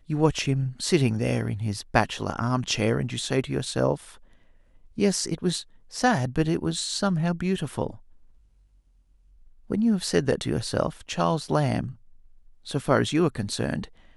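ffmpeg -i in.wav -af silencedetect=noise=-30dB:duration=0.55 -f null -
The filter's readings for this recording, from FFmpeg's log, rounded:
silence_start: 3.95
silence_end: 4.98 | silence_duration: 1.03
silence_start: 7.90
silence_end: 9.71 | silence_duration: 1.80
silence_start: 11.88
silence_end: 12.67 | silence_duration: 0.79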